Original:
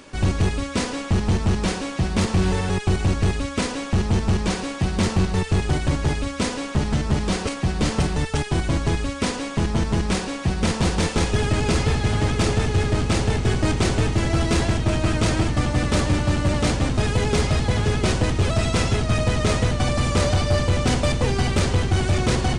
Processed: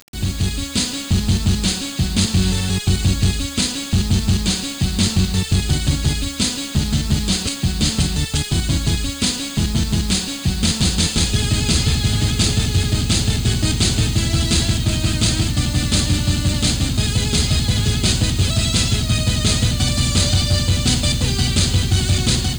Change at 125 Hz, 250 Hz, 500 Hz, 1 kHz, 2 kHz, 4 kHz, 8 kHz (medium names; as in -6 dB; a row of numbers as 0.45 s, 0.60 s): +3.5 dB, +2.5 dB, -5.5 dB, -5.0 dB, +0.5 dB, +10.5 dB, +10.5 dB